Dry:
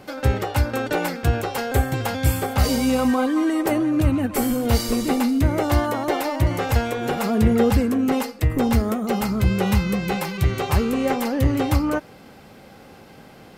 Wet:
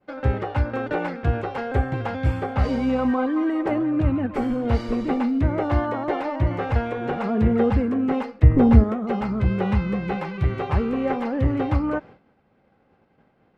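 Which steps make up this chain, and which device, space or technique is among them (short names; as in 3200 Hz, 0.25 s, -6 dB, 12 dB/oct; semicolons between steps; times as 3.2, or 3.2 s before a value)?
hearing-loss simulation (LPF 2100 Hz 12 dB/oct; expander -35 dBFS); 8.43–8.84 low shelf 490 Hz +9 dB; gain -2 dB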